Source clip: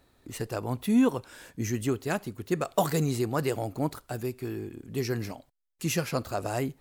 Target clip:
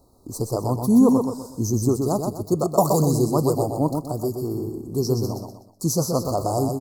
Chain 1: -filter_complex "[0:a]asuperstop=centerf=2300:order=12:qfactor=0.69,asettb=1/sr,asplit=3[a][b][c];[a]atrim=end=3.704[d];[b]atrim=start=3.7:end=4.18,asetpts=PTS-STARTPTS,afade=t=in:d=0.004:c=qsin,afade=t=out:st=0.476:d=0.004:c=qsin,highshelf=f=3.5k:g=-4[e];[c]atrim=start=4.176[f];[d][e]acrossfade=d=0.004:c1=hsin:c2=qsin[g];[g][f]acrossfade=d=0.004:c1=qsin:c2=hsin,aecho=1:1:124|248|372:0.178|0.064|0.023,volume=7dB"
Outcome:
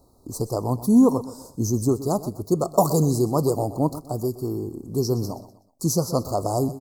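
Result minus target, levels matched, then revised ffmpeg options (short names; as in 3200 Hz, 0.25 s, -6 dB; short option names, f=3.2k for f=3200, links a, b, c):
echo-to-direct -10 dB
-filter_complex "[0:a]asuperstop=centerf=2300:order=12:qfactor=0.69,asettb=1/sr,asplit=3[a][b][c];[a]atrim=end=3.704[d];[b]atrim=start=3.7:end=4.18,asetpts=PTS-STARTPTS,afade=t=in:d=0.004:c=qsin,afade=t=out:st=0.476:d=0.004:c=qsin,highshelf=f=3.5k:g=-4[e];[c]atrim=start=4.176[f];[d][e]acrossfade=d=0.004:c1=hsin:c2=qsin[g];[g][f]acrossfade=d=0.004:c1=qsin:c2=hsin,aecho=1:1:124|248|372|496:0.562|0.202|0.0729|0.0262,volume=7dB"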